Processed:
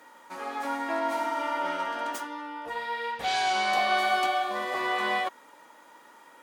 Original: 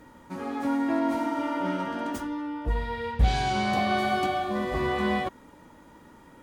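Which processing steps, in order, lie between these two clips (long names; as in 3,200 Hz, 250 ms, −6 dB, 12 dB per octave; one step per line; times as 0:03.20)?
high-pass filter 670 Hz 12 dB per octave
level +3.5 dB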